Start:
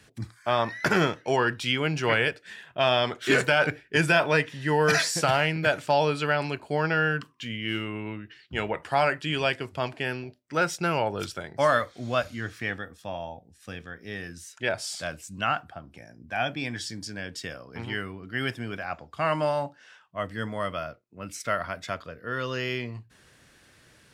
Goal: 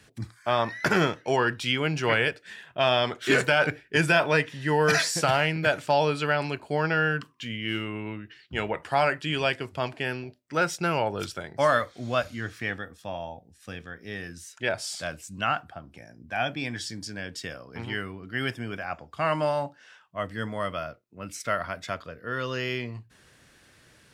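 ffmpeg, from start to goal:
-filter_complex "[0:a]asettb=1/sr,asplit=3[a][b][c];[a]atrim=end=18.534[d];[b]atrim=start=18.53:end=19.11,asetpts=PTS-STARTPTS,afade=t=in:d=0.004:c=qsin,afade=t=out:st=0.576:d=0.004:c=qsin,bandreject=f=4k:w=5.3[e];[c]atrim=start=19.106[f];[d][e]acrossfade=d=0.004:c1=hsin:c2=qsin[g];[g][f]acrossfade=d=0.004:c1=qsin:c2=hsin"

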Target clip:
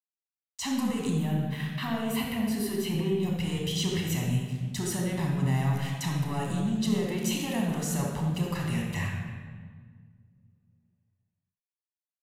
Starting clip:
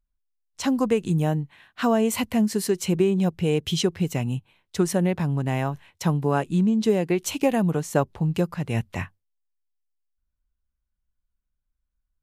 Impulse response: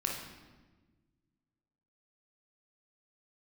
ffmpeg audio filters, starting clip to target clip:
-filter_complex "[0:a]agate=range=-15dB:threshold=-55dB:ratio=16:detection=peak,acontrast=50,aeval=exprs='sgn(val(0))*max(abs(val(0))-0.00224,0)':c=same,highshelf=f=2.5k:g=12,acontrast=71,alimiter=limit=-22.5dB:level=0:latency=1:release=58,asettb=1/sr,asplit=3[a][b][c];[a]atrim=end=1.104[d];[b]atrim=start=1.1:end=3.23,asetpts=PTS-STARTPTS,afade=t=in:d=0.004:c=qsin,afade=t=out:st=2.126:d=0.004:c=qsin,equalizer=f=7k:w=1.3:g=-11.5[e];[c]atrim=start=3.226[f];[d][e]acrossfade=d=0.004:c1=hsin:c2=qsin[g];[g][f]acrossfade=d=0.004:c1=qsin:c2=hsin[h];[1:a]atrim=start_sample=2205,asetrate=32193,aresample=44100[i];[h][i]afir=irnorm=-1:irlink=0,volume=-7.5dB"

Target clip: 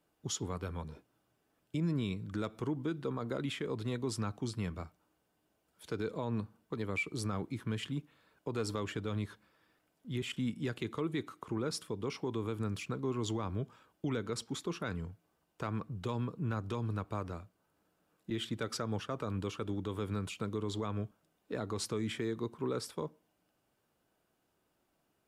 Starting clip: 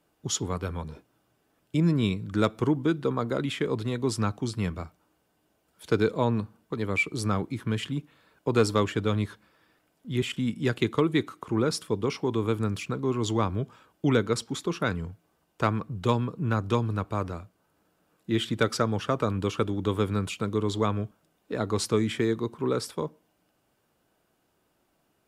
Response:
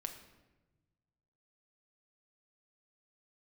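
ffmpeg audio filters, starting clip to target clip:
-filter_complex "[0:a]asettb=1/sr,asplit=3[a][b][c];[a]atrim=end=18.304[d];[b]atrim=start=18.3:end=20.35,asetpts=PTS-STARTPTS,afade=t=in:d=0.004:c=qsin,afade=t=out:st=2.046:d=0.004:c=qsin,agate=range=-33dB:threshold=-30dB:ratio=3:detection=peak[e];[c]atrim=start=20.346[f];[d][e]acrossfade=d=0.004:c1=hsin:c2=qsin[g];[g][f]acrossfade=d=0.004:c1=qsin:c2=hsin,alimiter=limit=-19.5dB:level=0:latency=1:release=84,volume=-6.5dB"

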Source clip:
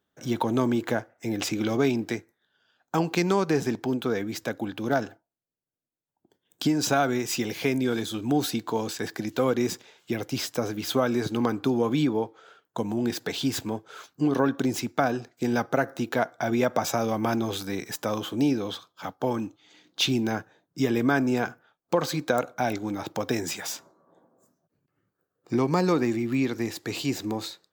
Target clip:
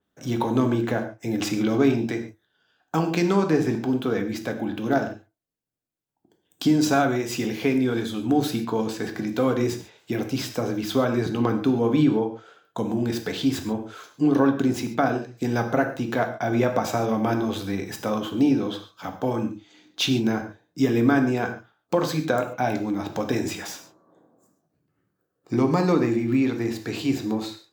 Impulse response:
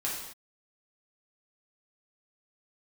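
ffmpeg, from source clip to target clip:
-filter_complex "[0:a]asplit=2[a][b];[1:a]atrim=start_sample=2205,atrim=end_sample=6615,lowshelf=f=410:g=9[c];[b][c]afir=irnorm=-1:irlink=0,volume=-6.5dB[d];[a][d]amix=inputs=2:normalize=0,adynamicequalizer=threshold=0.00794:dfrequency=4200:dqfactor=0.7:tfrequency=4200:tqfactor=0.7:attack=5:release=100:ratio=0.375:range=3:mode=cutabove:tftype=highshelf,volume=-3dB"

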